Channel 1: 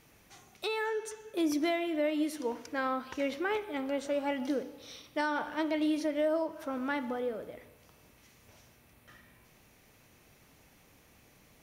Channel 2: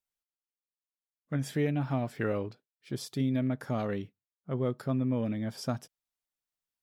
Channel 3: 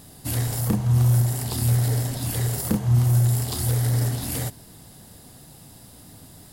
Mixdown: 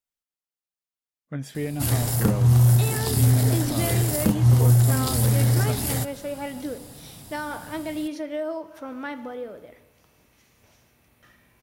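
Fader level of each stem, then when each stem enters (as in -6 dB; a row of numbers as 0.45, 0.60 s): 0.0, -0.5, +2.0 dB; 2.15, 0.00, 1.55 s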